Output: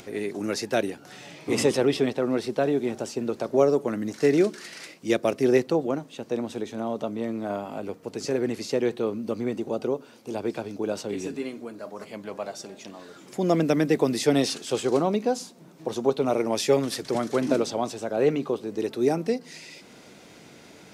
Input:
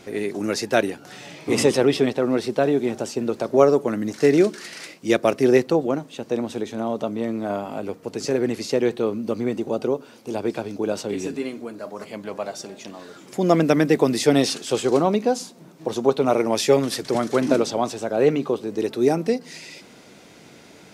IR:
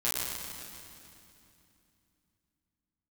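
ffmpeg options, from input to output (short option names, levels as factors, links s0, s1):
-filter_complex "[0:a]acrossover=split=760|2200[s0][s1][s2];[s1]alimiter=limit=0.1:level=0:latency=1:release=227[s3];[s0][s3][s2]amix=inputs=3:normalize=0,acompressor=mode=upward:threshold=0.0112:ratio=2.5,volume=0.631"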